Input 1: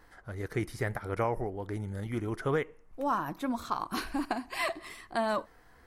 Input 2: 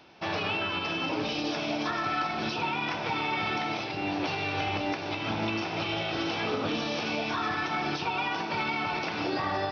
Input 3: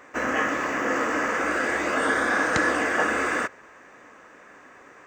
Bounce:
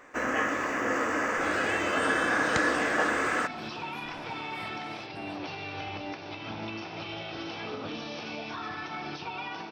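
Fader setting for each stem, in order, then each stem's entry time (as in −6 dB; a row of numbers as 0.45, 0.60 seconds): −17.5, −7.0, −3.5 decibels; 0.00, 1.20, 0.00 seconds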